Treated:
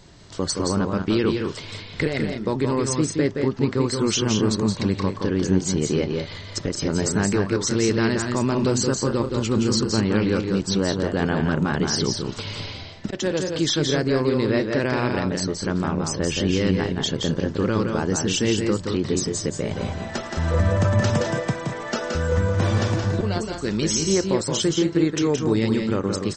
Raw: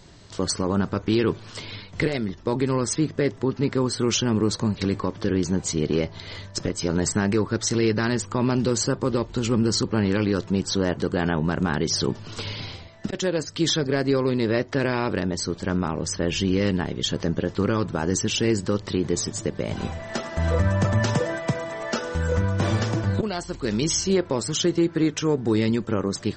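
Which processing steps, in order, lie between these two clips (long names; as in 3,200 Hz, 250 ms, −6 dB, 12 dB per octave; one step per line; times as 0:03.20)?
loudspeakers that aren't time-aligned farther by 59 metres −5 dB, 70 metres −10 dB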